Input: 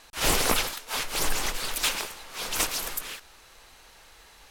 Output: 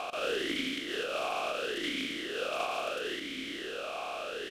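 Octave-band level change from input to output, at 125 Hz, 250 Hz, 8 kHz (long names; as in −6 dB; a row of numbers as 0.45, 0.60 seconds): −14.5, +1.5, −19.0 decibels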